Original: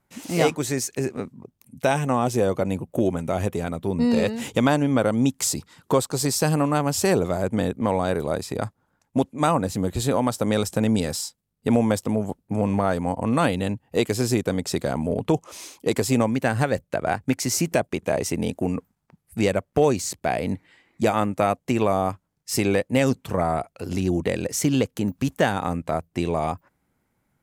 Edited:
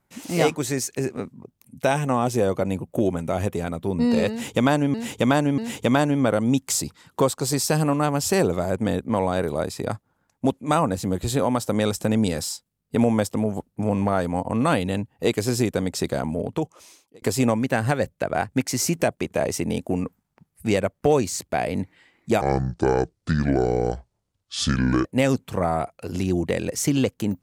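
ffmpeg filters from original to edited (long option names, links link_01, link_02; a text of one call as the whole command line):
ffmpeg -i in.wav -filter_complex "[0:a]asplit=6[link_01][link_02][link_03][link_04][link_05][link_06];[link_01]atrim=end=4.942[link_07];[link_02]atrim=start=4.298:end=4.942[link_08];[link_03]atrim=start=4.298:end=15.94,asetpts=PTS-STARTPTS,afade=type=out:start_time=10.592:duration=1.05[link_09];[link_04]atrim=start=15.94:end=21.134,asetpts=PTS-STARTPTS,afade=type=in:duration=0.004:curve=hsin[link_10];[link_05]atrim=start=21.13:end=22.82,asetpts=PTS-STARTPTS,asetrate=28224,aresample=44100[link_11];[link_06]atrim=start=22.816[link_12];[link_07][link_08]acrossfade=duration=0.004:curve1=hsin:curve2=hsin[link_13];[link_09][link_10]concat=n=2:v=0:a=1[link_14];[link_13][link_14]acrossfade=duration=0.004:curve1=hsin:curve2=hsin[link_15];[link_15][link_11]acrossfade=duration=0.004:curve1=hsin:curve2=hsin[link_16];[link_16][link_12]acrossfade=duration=0.004:curve1=hsin:curve2=hsin" out.wav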